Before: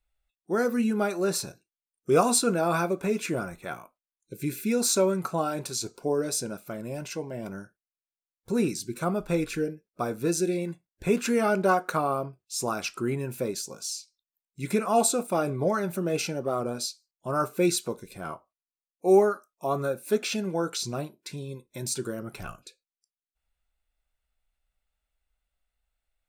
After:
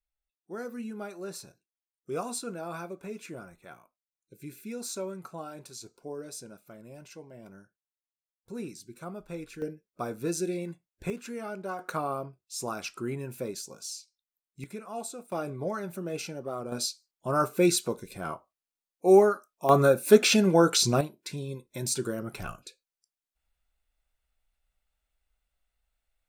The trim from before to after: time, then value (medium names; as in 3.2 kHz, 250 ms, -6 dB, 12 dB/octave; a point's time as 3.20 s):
-12.5 dB
from 9.62 s -4.5 dB
from 11.10 s -13.5 dB
from 11.79 s -5 dB
from 14.64 s -15 dB
from 15.32 s -7 dB
from 16.72 s +1 dB
from 19.69 s +8 dB
from 21.01 s +1 dB